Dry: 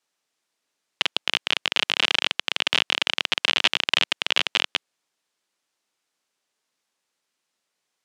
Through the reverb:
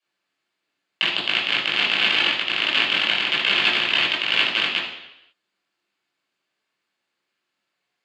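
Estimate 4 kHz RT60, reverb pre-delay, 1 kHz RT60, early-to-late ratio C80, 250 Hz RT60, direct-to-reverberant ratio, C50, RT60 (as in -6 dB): 0.90 s, 15 ms, 0.85 s, 7.0 dB, 0.80 s, -7.0 dB, 4.5 dB, 0.85 s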